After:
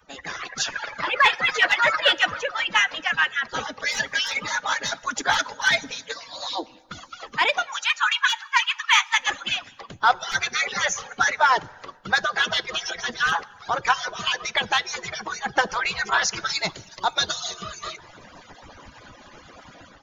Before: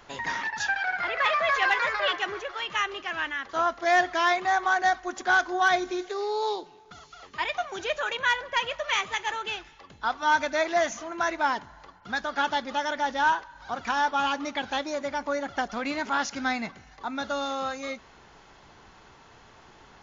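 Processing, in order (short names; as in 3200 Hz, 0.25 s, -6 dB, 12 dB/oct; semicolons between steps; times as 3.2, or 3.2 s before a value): median-filter separation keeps percussive; AGC gain up to 11 dB; in parallel at -7.5 dB: soft clip -12.5 dBFS, distortion -15 dB; 7.66–9.18 on the sum: steep high-pass 870 Hz 96 dB/oct; 16.49–17.54 resonant high shelf 2900 Hz +7 dB, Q 1.5; on a send at -21 dB: reverb RT60 1.2 s, pre-delay 3 ms; on the sum: gain -2.5 dB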